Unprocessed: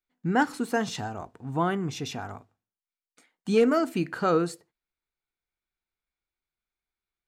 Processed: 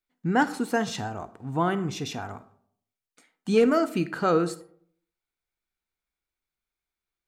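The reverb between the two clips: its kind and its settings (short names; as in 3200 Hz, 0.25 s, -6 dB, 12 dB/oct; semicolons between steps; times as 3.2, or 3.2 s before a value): digital reverb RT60 0.64 s, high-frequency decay 0.4×, pre-delay 10 ms, DRR 14.5 dB; gain +1 dB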